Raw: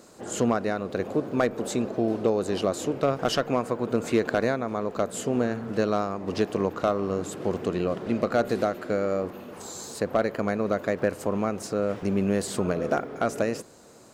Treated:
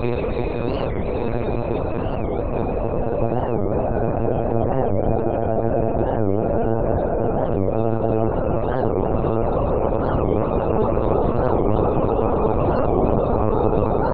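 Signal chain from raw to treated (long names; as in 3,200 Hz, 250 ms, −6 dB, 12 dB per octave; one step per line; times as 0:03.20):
ceiling on every frequency bin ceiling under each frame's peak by 13 dB
in parallel at +1 dB: downward compressor 8 to 1, threshold −34 dBFS, peak gain reduction 16.5 dB
on the sum: extreme stretch with random phases 27×, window 0.50 s, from 0:01.83
spectral peaks only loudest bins 64
high-frequency loss of the air 55 metres
delay with a high-pass on its return 825 ms, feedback 72%, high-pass 2,500 Hz, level −19 dB
linear-prediction vocoder at 8 kHz pitch kept
wow of a warped record 45 rpm, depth 250 cents
level +4 dB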